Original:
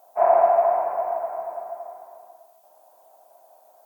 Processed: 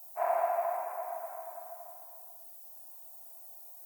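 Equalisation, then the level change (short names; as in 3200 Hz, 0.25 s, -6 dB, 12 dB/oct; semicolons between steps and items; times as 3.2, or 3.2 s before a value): differentiator; +7.0 dB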